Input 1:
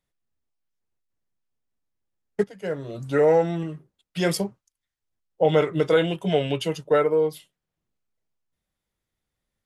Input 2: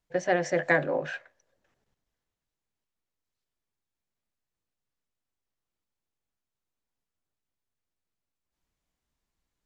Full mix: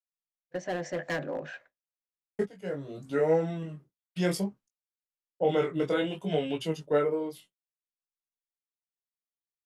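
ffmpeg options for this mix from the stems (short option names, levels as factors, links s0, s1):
-filter_complex "[0:a]flanger=delay=18.5:depth=4.1:speed=0.61,volume=0.596[s0];[1:a]asoftclip=type=hard:threshold=0.0891,adelay=400,volume=0.473[s1];[s0][s1]amix=inputs=2:normalize=0,equalizer=f=230:w=1.6:g=5,agate=range=0.0224:threshold=0.00316:ratio=3:detection=peak"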